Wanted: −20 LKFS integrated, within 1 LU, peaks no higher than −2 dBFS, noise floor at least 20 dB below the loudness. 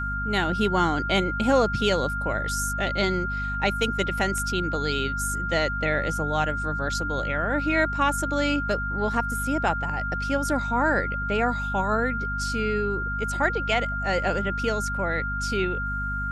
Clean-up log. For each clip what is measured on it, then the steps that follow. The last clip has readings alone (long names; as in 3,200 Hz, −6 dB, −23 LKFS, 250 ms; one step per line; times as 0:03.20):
mains hum 50 Hz; hum harmonics up to 250 Hz; level of the hum −29 dBFS; interfering tone 1,400 Hz; level of the tone −28 dBFS; integrated loudness −25.0 LKFS; sample peak −9.0 dBFS; target loudness −20.0 LKFS
→ mains-hum notches 50/100/150/200/250 Hz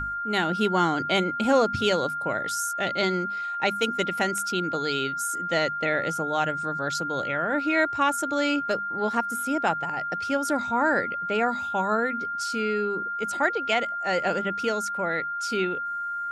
mains hum none found; interfering tone 1,400 Hz; level of the tone −28 dBFS
→ notch filter 1,400 Hz, Q 30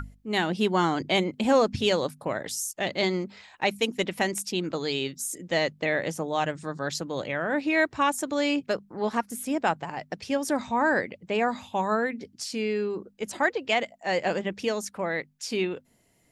interfering tone none found; integrated loudness −27.5 LKFS; sample peak −10.5 dBFS; target loudness −20.0 LKFS
→ level +7.5 dB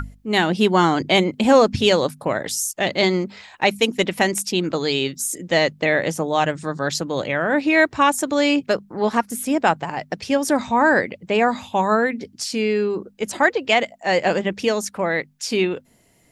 integrated loudness −20.0 LKFS; sample peak −3.0 dBFS; background noise floor −56 dBFS